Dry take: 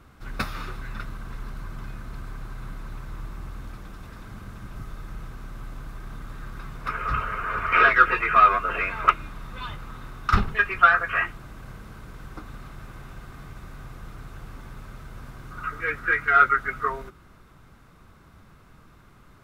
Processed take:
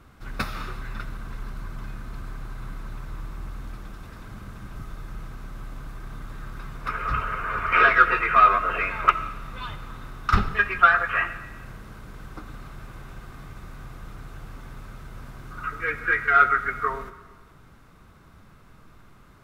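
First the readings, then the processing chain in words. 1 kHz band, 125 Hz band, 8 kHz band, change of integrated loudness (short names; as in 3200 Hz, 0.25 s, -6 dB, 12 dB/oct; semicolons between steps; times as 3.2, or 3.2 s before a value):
+0.5 dB, 0.0 dB, n/a, 0.0 dB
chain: digital reverb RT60 1.3 s, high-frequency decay 0.85×, pre-delay 25 ms, DRR 12.5 dB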